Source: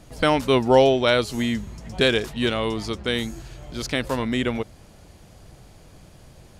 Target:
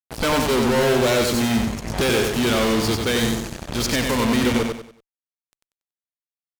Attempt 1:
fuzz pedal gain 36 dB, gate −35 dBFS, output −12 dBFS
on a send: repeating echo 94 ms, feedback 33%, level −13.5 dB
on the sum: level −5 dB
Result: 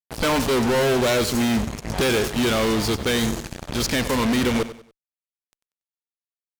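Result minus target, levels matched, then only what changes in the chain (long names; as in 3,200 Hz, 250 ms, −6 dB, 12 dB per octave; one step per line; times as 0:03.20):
echo-to-direct −9.5 dB
change: repeating echo 94 ms, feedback 33%, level −4 dB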